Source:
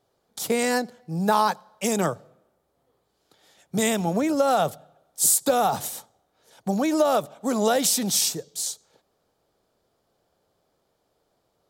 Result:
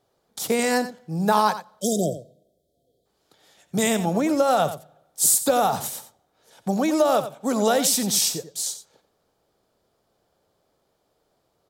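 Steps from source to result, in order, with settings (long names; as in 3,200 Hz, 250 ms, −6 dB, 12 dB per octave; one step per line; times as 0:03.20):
time-frequency box erased 0:01.81–0:03.06, 740–3,100 Hz
on a send: single-tap delay 89 ms −12 dB
on the sum: level +1 dB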